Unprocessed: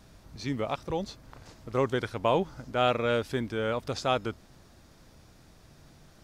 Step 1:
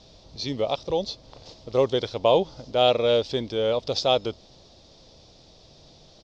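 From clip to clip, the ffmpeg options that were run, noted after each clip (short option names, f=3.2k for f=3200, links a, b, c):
-af "firequalizer=gain_entry='entry(250,0);entry(520,9);entry(1500,-8);entry(3500,12);entry(5200,11);entry(11000,-27)':delay=0.05:min_phase=1"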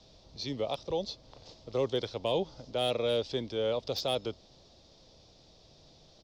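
-filter_complex "[0:a]acrossover=split=190|380|1800[a][b][c][d];[c]alimiter=limit=-20dB:level=0:latency=1:release=36[e];[d]volume=22.5dB,asoftclip=hard,volume=-22.5dB[f];[a][b][e][f]amix=inputs=4:normalize=0,volume=-6.5dB"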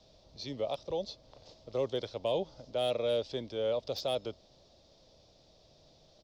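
-af "equalizer=f=600:t=o:w=0.42:g=6,volume=-4.5dB"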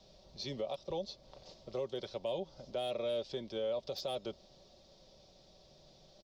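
-af "aecho=1:1:5.3:0.45,alimiter=level_in=4.5dB:limit=-24dB:level=0:latency=1:release=264,volume=-4.5dB"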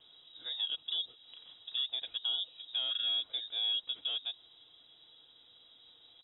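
-filter_complex "[0:a]acrossover=split=2500[a][b];[b]acompressor=threshold=-60dB:ratio=4:attack=1:release=60[c];[a][c]amix=inputs=2:normalize=0,lowpass=f=3.3k:t=q:w=0.5098,lowpass=f=3.3k:t=q:w=0.6013,lowpass=f=3.3k:t=q:w=0.9,lowpass=f=3.3k:t=q:w=2.563,afreqshift=-3900,volume=2.5dB"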